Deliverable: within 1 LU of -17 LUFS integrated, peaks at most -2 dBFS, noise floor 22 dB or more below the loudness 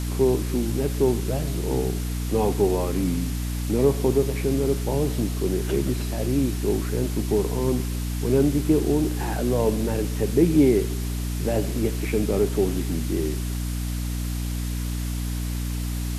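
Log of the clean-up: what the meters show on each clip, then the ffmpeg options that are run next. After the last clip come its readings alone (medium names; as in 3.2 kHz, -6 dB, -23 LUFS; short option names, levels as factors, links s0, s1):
hum 60 Hz; highest harmonic 300 Hz; hum level -25 dBFS; noise floor -28 dBFS; noise floor target -47 dBFS; loudness -24.5 LUFS; peak level -6.0 dBFS; loudness target -17.0 LUFS
-> -af "bandreject=f=60:t=h:w=6,bandreject=f=120:t=h:w=6,bandreject=f=180:t=h:w=6,bandreject=f=240:t=h:w=6,bandreject=f=300:t=h:w=6"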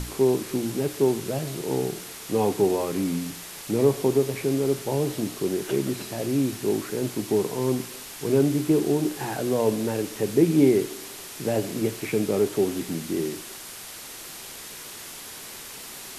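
hum not found; noise floor -40 dBFS; noise floor target -47 dBFS
-> -af "afftdn=nr=7:nf=-40"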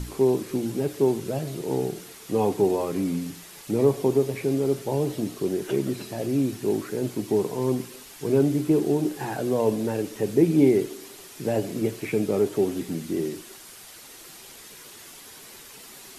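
noise floor -46 dBFS; noise floor target -48 dBFS
-> -af "afftdn=nr=6:nf=-46"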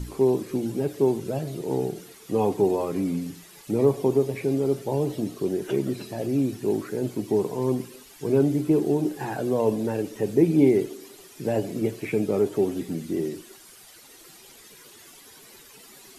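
noise floor -50 dBFS; loudness -25.5 LUFS; peak level -6.5 dBFS; loudness target -17.0 LUFS
-> -af "volume=2.66,alimiter=limit=0.794:level=0:latency=1"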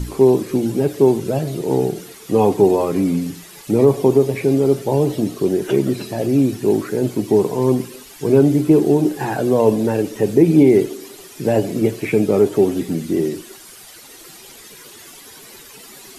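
loudness -17.0 LUFS; peak level -2.0 dBFS; noise floor -41 dBFS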